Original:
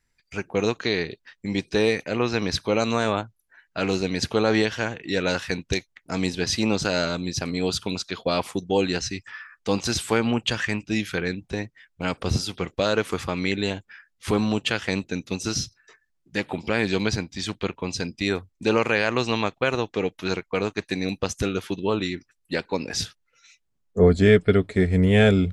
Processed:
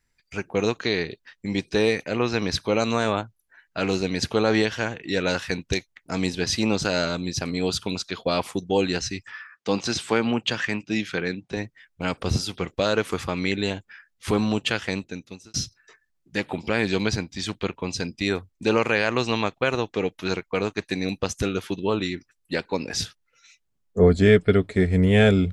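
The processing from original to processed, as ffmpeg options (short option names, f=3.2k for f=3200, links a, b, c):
-filter_complex "[0:a]asettb=1/sr,asplit=3[a][b][c];[a]atrim=end=9.414[d];[b]atrim=start=9.41:end=11.57,asetpts=PTS-STARTPTS,afade=t=in:d=0.004:c=qsin,afade=t=out:st=2.156:d=0.004:c=qsin,highpass=130,lowpass=6.7k[e];[c]atrim=start=11.566[f];[d][e]acrossfade=d=0.004:c1=hsin:c2=qsin[g];[g][f]acrossfade=d=0.004:c1=qsin:c2=hsin,asplit=2[h][i];[h]atrim=end=15.54,asetpts=PTS-STARTPTS,afade=t=out:st=14.76:d=0.78[j];[i]atrim=start=15.54,asetpts=PTS-STARTPTS,afade=t=in:d=0.004:c=hsin[k];[j][k]concat=n=2:v=0:a=1"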